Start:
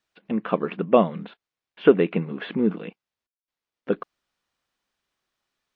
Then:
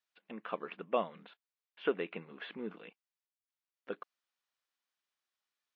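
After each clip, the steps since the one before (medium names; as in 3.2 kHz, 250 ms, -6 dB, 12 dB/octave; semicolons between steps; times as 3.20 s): high-pass 960 Hz 6 dB/octave; trim -9 dB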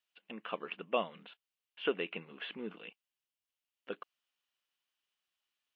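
peaking EQ 2.9 kHz +10 dB 0.44 oct; trim -1 dB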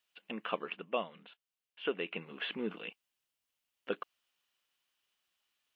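gain riding within 4 dB 0.5 s; trim +1.5 dB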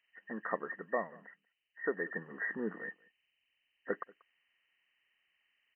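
knee-point frequency compression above 1.6 kHz 4:1; echo from a far wall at 32 m, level -24 dB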